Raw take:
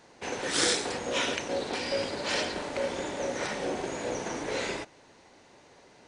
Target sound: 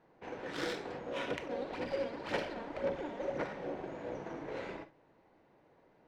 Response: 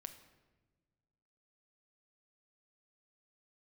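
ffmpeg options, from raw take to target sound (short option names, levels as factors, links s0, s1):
-filter_complex "[0:a]asettb=1/sr,asplit=3[s0][s1][s2];[s0]atrim=end=1.304[s3];[s1]atrim=start=1.3:end=3.44,asetpts=PTS-STARTPTS,afade=t=in:d=0.004:c=qsin,afade=t=out:st=2.136:d=0.004:c=qsin,aphaser=in_gain=1:out_gain=1:delay=4.4:decay=0.61:speed=1.9:type=sinusoidal[s4];[s2]atrim=start=3.436[s5];[s3][s4]acrossfade=d=0.004:c1=hsin:c2=qsin[s6];[s6][s5]acrossfade=d=0.004:c1=qsin:c2=hsin,adynamicsmooth=sensitivity=1:basefreq=1800[s7];[1:a]atrim=start_sample=2205,atrim=end_sample=3528[s8];[s7][s8]afir=irnorm=-1:irlink=0,volume=0.75"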